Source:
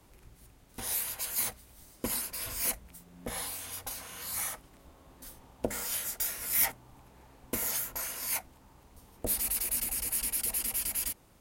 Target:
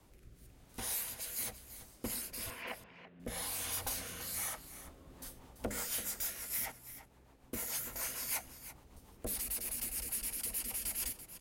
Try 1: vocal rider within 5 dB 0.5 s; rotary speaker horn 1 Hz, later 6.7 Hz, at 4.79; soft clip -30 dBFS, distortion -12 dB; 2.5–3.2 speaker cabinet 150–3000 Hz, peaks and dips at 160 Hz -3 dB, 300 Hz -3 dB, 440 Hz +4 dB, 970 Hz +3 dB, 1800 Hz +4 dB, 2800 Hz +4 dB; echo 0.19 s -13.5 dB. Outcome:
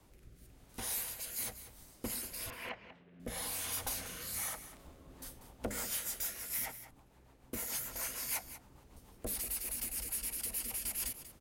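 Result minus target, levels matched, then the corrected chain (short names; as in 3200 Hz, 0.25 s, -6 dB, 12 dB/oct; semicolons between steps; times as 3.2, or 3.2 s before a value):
echo 0.146 s early
vocal rider within 5 dB 0.5 s; rotary speaker horn 1 Hz, later 6.7 Hz, at 4.79; soft clip -30 dBFS, distortion -12 dB; 2.5–3.2 speaker cabinet 150–3000 Hz, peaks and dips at 160 Hz -3 dB, 300 Hz -3 dB, 440 Hz +4 dB, 970 Hz +3 dB, 1800 Hz +4 dB, 2800 Hz +4 dB; echo 0.336 s -13.5 dB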